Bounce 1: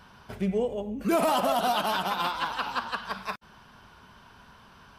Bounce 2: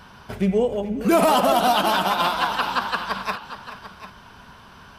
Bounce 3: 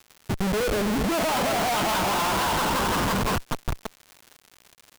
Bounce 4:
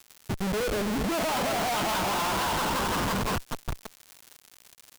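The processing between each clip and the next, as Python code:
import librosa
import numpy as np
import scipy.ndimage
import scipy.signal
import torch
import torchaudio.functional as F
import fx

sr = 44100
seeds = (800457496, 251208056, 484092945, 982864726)

y1 = fx.echo_multitap(x, sr, ms=(427, 744), db=(-14.5, -14.0))
y1 = y1 * 10.0 ** (7.0 / 20.0)
y2 = fx.schmitt(y1, sr, flips_db=-28.5)
y2 = fx.dmg_crackle(y2, sr, seeds[0], per_s=180.0, level_db=-34.0)
y2 = y2 * 10.0 ** (-1.0 / 20.0)
y3 = fx.high_shelf(y2, sr, hz=4000.0, db=7.5)
y3 = np.clip(y3, -10.0 ** (-23.0 / 20.0), 10.0 ** (-23.0 / 20.0))
y3 = y3 * 10.0 ** (-3.5 / 20.0)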